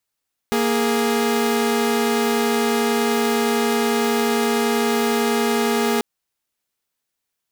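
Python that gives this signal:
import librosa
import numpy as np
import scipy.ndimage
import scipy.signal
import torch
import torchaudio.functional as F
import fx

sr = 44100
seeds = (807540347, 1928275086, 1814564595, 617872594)

y = fx.chord(sr, length_s=5.49, notes=(58, 68), wave='saw', level_db=-17.5)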